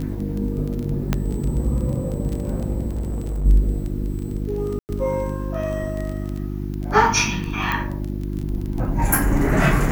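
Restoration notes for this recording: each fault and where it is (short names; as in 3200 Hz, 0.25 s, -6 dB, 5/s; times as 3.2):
crackle 16/s -25 dBFS
hum 50 Hz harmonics 7 -27 dBFS
1.13 pop -6 dBFS
2.89–3.46 clipped -21.5 dBFS
4.79–4.89 gap 99 ms
7.72 pop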